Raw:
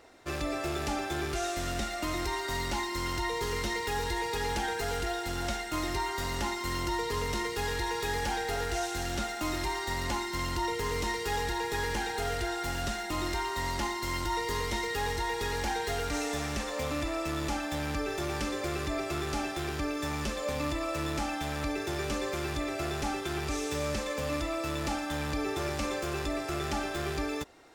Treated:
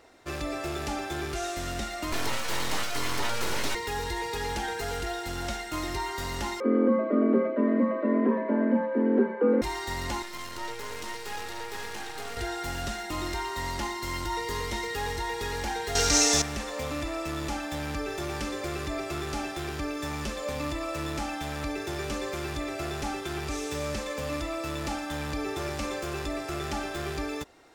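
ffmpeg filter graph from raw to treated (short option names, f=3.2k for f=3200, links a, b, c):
-filter_complex "[0:a]asettb=1/sr,asplit=3[a][b][c];[a]atrim=end=2.124[d];[b]atrim=start=2.12:end=3.75,asetpts=PTS-STARTPTS,afade=t=in:d=0.004:c=qsin,afade=t=out:st=1.626:d=0.004:c=qsin,acontrast=33,aeval=exprs='abs(val(0))':c=same[e];[c]atrim=start=3.746[f];[d][e]acrossfade=d=0.004:c1=hsin:c2=qsin[g];[g][f]acrossfade=d=0.004:c1=qsin:c2=hsin,asettb=1/sr,asplit=3[h][i][j];[h]atrim=end=6.604[k];[i]atrim=start=6.6:end=9.62,asetpts=PTS-STARTPTS,afade=t=in:d=0.004:c=qsin,afade=t=out:st=3.016:d=0.004:c=qsin,lowpass=f=1.5k:w=0.5412,lowpass=f=1.5k:w=1.3066,lowshelf=f=400:t=q:w=1.5:g=12,afreqshift=180[l];[j]atrim=start=9.616[m];[k][l]acrossfade=d=0.004:c1=hsin:c2=qsin[n];[n][m]acrossfade=d=0.004:c1=qsin:c2=hsin,asettb=1/sr,asplit=3[o][p][q];[o]atrim=end=10.224[r];[p]atrim=start=10.22:end=12.37,asetpts=PTS-STARTPTS,afade=t=in:d=0.004:c=qsin,afade=t=out:st=2.146:d=0.004:c=qsin,highpass=f=270:p=1,aeval=exprs='max(val(0),0)':c=same[s];[q]atrim=start=12.366[t];[r][s]acrossfade=d=0.004:c1=hsin:c2=qsin[u];[u][t]acrossfade=d=0.004:c1=qsin:c2=hsin,asettb=1/sr,asplit=3[v][w][x];[v]atrim=end=15.954[y];[w]atrim=start=15.95:end=16.42,asetpts=PTS-STARTPTS,afade=t=in:d=0.004:c=qsin,afade=t=out:st=0.466:d=0.004:c=qsin,equalizer=f=5.9k:w=1.1:g=15,acontrast=50[z];[x]atrim=start=16.416[aa];[y][z]acrossfade=d=0.004:c1=hsin:c2=qsin[ab];[ab][aa]acrossfade=d=0.004:c1=qsin:c2=hsin"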